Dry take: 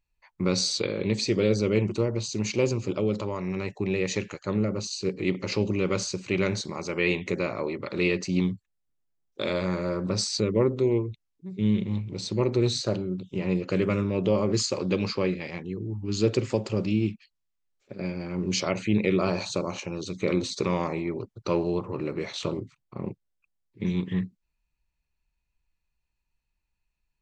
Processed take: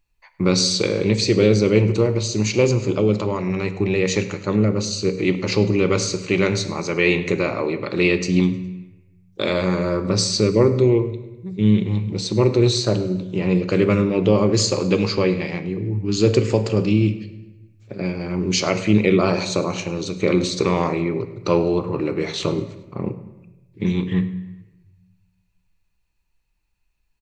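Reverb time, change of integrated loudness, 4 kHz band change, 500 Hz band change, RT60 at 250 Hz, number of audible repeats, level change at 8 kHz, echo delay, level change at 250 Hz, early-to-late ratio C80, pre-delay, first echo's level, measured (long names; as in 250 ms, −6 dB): 1.0 s, +7.5 dB, +7.5 dB, +7.5 dB, 1.2 s, 3, +7.5 dB, 103 ms, +7.5 dB, 13.5 dB, 3 ms, −19.0 dB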